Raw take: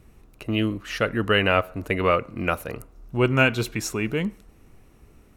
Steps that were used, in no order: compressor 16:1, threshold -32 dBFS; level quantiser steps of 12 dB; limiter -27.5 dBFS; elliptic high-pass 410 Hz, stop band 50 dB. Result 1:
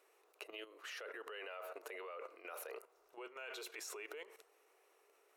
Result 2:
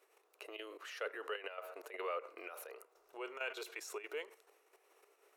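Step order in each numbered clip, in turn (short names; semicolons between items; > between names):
limiter > compressor > elliptic high-pass > level quantiser; limiter > level quantiser > compressor > elliptic high-pass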